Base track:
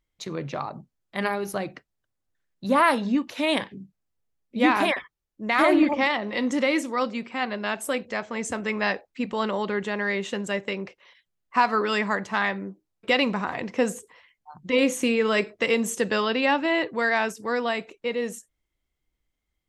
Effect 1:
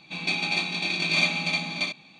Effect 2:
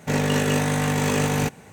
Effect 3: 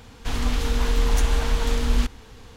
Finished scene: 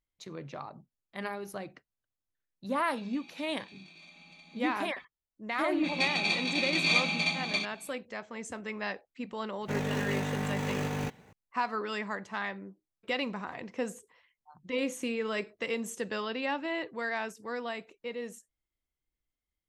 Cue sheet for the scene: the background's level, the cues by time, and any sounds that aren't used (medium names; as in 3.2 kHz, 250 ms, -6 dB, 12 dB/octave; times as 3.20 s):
base track -10.5 dB
2.86 s: add 1 -13.5 dB + compression, threshold -39 dBFS
5.73 s: add 1 -3 dB
9.61 s: add 2 -10.5 dB + median filter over 5 samples
not used: 3